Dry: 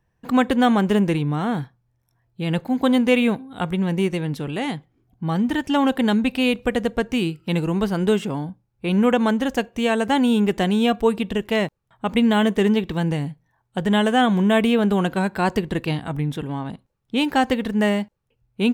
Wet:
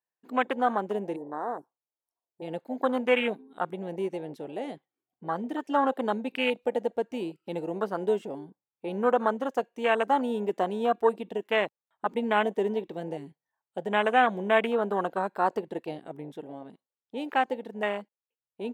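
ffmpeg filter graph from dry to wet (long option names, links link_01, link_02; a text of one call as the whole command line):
ffmpeg -i in.wav -filter_complex "[0:a]asettb=1/sr,asplit=3[link_01][link_02][link_03];[link_01]atrim=end=1.164[link_04];[link_02]atrim=start=1.16:end=2.42,asetpts=PTS-STARTPTS,afade=type=in:duration=0.004:curve=qsin,afade=type=out:start_time=1.256:duration=0.004:curve=qsin,asuperstop=centerf=2700:order=8:qfactor=0.58,lowshelf=frequency=260:width_type=q:width=1.5:gain=-7.5[link_05];[link_03]atrim=start=2.416[link_06];[link_04][link_05]acrossfade=duration=0.004:curve1=hsin:curve2=qsin[link_07];[link_07][link_06]acrossfade=duration=0.004:curve1=qsin:curve2=hsin,afwtdn=0.0631,highpass=500,dynaudnorm=framelen=150:gausssize=31:maxgain=3dB,volume=-3.5dB" out.wav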